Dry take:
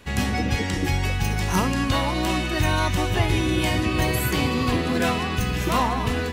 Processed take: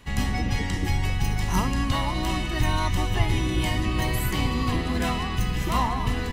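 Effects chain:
sub-octave generator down 2 octaves, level −2 dB
comb filter 1 ms, depth 34%
reversed playback
upward compression, threshold −20 dBFS
reversed playback
level −4.5 dB

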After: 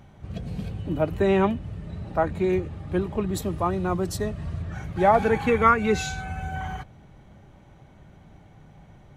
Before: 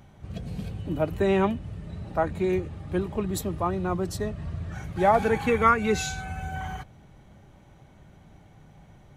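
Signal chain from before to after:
high-shelf EQ 5,700 Hz −5.5 dB, from 0:03.42 +2.5 dB, from 0:04.62 −7 dB
level +2 dB

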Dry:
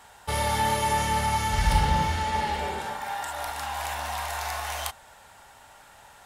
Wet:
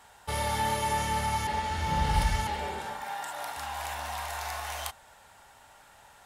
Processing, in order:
0:01.47–0:02.47: reverse
0:03.04–0:03.57: high-pass filter 120 Hz 24 dB per octave
level −4 dB

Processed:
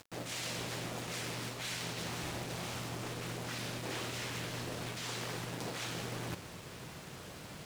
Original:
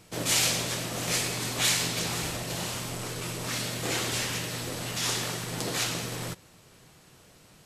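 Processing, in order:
reversed playback
downward compressor 4 to 1, threshold −46 dBFS, peak gain reduction 20.5 dB
reversed playback
high-pass filter 42 Hz 12 dB per octave
echo ahead of the sound 51 ms −22 dB
log-companded quantiser 4 bits
upward compression, threshold −54 dBFS
high-shelf EQ 4,900 Hz −8 dB
highs frequency-modulated by the lows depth 0.81 ms
level +7 dB

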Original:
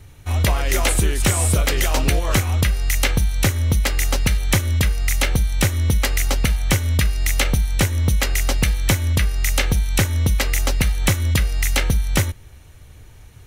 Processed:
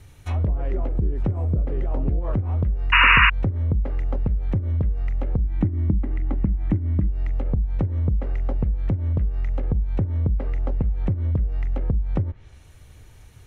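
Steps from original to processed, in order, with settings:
0:05.44–0:07.09: thirty-one-band graphic EQ 200 Hz +7 dB, 315 Hz +11 dB, 500 Hz −11 dB, 2,000 Hz +6 dB, 5,000 Hz −11 dB
treble cut that deepens with the level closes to 310 Hz, closed at −13 dBFS
0:02.92–0:03.30: sound drawn into the spectrogram noise 930–2,900 Hz −11 dBFS
level −3.5 dB

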